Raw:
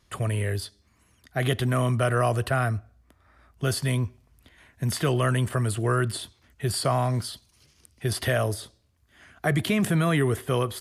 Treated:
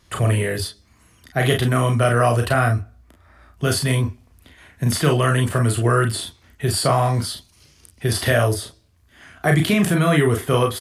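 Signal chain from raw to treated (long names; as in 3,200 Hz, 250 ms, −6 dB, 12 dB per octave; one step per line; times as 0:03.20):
in parallel at −2.5 dB: speech leveller
on the sum: ambience of single reflections 34 ms −5 dB, 46 ms −8.5 dB
level +1 dB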